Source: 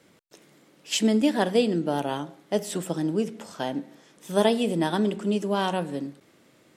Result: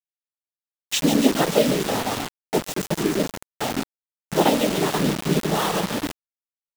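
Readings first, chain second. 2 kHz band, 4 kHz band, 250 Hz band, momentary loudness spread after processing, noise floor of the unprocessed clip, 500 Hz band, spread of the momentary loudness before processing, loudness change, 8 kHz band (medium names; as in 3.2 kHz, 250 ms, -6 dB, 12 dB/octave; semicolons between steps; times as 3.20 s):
+6.0 dB, +5.5 dB, +2.5 dB, 10 LU, -60 dBFS, +2.5 dB, 11 LU, +3.5 dB, +7.5 dB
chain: thinning echo 143 ms, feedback 77%, high-pass 730 Hz, level -8 dB; noise-vocoded speech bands 12; bit crusher 5-bit; trim +3 dB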